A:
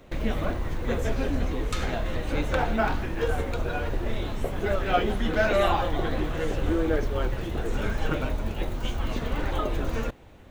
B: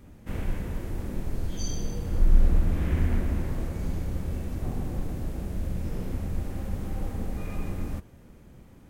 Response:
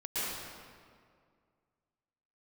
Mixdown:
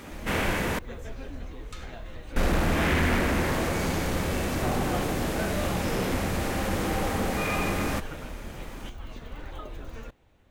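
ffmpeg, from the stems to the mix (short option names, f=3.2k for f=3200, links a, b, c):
-filter_complex "[0:a]volume=-10.5dB[a];[1:a]asplit=2[b][c];[c]highpass=f=720:p=1,volume=31dB,asoftclip=type=tanh:threshold=-6.5dB[d];[b][d]amix=inputs=2:normalize=0,lowpass=f=5.7k:p=1,volume=-6dB,volume=-4.5dB,asplit=3[e][f][g];[e]atrim=end=0.79,asetpts=PTS-STARTPTS,afade=t=out:st=0.786:d=0.004:c=hsin[h];[f]atrim=start=0.79:end=2.36,asetpts=PTS-STARTPTS,volume=0[i];[g]atrim=start=2.36,asetpts=PTS-STARTPTS,afade=t=in:d=0.004:c=hsin[j];[h][i][j]concat=n=3:v=0:a=1[k];[a][k]amix=inputs=2:normalize=0,equalizer=f=320:w=0.32:g=-3"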